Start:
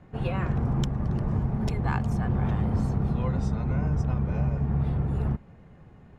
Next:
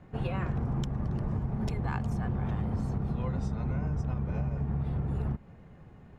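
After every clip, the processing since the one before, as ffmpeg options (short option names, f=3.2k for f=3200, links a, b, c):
-af "acompressor=threshold=-26dB:ratio=6,volume=-1dB"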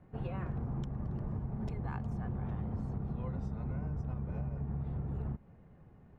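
-af "highshelf=f=2.5k:g=-11,volume=-6dB"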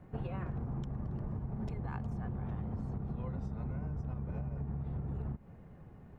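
-af "acompressor=threshold=-39dB:ratio=6,volume=4.5dB"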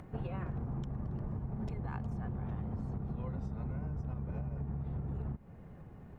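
-af "acompressor=mode=upward:threshold=-45dB:ratio=2.5"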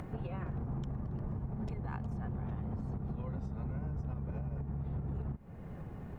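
-af "alimiter=level_in=12.5dB:limit=-24dB:level=0:latency=1:release=410,volume=-12.5dB,volume=6.5dB"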